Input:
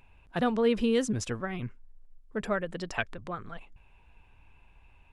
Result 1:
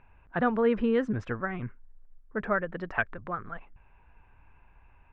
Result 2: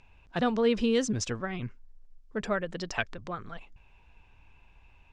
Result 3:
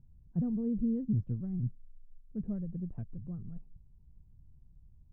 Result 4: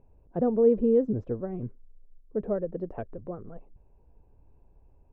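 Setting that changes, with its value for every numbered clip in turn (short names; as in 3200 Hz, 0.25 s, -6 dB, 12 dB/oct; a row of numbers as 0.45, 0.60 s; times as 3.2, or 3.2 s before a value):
synth low-pass, frequency: 1600, 6000, 160, 490 Hz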